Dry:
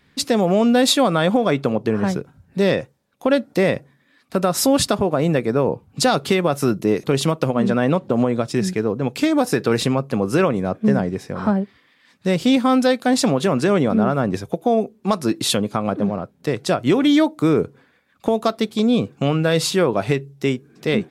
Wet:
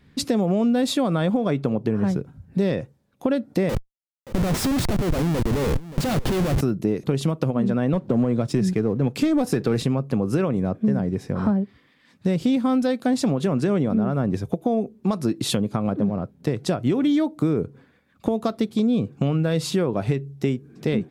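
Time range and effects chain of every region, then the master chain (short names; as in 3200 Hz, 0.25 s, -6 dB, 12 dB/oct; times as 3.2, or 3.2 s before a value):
3.69–6.61 Schmitt trigger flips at -28 dBFS + echo 0.576 s -19.5 dB
7.93–9.82 HPF 50 Hz 24 dB/oct + sample leveller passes 1
whole clip: de-esser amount 30%; low shelf 380 Hz +11.5 dB; compressor 3:1, threshold -16 dBFS; gain -4 dB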